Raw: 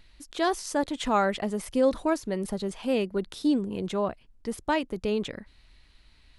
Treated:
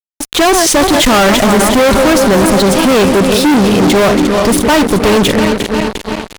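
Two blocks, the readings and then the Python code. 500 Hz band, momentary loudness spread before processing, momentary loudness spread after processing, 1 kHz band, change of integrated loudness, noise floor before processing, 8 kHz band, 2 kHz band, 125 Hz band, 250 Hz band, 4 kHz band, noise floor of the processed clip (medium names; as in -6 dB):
+18.5 dB, 9 LU, 5 LU, +18.5 dB, +19.0 dB, -58 dBFS, +26.5 dB, +22.0 dB, +22.5 dB, +19.0 dB, +24.5 dB, -36 dBFS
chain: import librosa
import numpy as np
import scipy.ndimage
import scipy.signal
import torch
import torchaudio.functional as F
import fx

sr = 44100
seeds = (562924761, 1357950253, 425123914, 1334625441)

y = fx.reverse_delay_fb(x, sr, ms=176, feedback_pct=78, wet_db=-11.5)
y = fx.fuzz(y, sr, gain_db=40.0, gate_db=-44.0)
y = y * librosa.db_to_amplitude(6.5)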